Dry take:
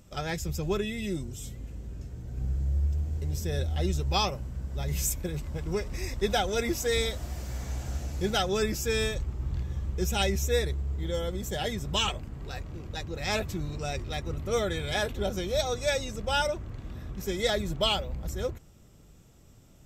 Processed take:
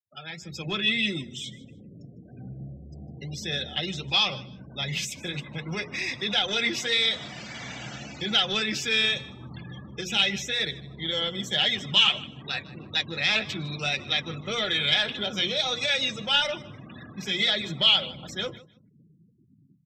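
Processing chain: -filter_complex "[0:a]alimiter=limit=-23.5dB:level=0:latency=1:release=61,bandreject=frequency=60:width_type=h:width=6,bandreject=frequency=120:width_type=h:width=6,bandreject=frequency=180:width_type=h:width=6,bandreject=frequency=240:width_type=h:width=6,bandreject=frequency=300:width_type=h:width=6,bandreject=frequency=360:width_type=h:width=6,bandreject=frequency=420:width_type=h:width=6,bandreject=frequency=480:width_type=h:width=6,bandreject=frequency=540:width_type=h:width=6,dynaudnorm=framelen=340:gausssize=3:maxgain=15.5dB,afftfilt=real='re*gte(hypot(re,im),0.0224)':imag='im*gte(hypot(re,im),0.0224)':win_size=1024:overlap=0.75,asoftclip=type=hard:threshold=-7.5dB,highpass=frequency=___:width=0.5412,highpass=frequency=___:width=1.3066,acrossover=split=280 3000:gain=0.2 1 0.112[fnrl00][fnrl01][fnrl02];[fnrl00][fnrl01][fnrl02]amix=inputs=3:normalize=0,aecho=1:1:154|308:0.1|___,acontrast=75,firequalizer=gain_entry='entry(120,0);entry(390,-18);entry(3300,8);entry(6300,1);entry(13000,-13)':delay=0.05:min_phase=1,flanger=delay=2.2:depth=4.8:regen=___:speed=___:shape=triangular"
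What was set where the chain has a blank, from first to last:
140, 140, 0.02, -69, 1.7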